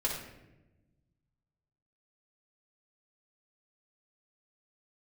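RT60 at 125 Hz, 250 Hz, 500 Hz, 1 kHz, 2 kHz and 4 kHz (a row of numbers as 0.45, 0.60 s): 2.1, 1.7, 1.2, 0.80, 0.85, 0.60 s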